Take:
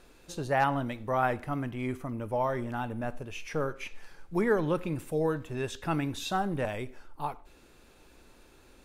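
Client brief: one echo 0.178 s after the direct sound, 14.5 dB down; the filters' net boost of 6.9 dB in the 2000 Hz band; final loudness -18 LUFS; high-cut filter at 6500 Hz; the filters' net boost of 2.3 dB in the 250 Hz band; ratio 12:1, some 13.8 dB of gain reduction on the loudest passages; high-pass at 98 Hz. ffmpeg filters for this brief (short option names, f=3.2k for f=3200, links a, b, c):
-af "highpass=98,lowpass=6.5k,equalizer=f=250:t=o:g=3,equalizer=f=2k:t=o:g=9,acompressor=threshold=-32dB:ratio=12,aecho=1:1:178:0.188,volume=19.5dB"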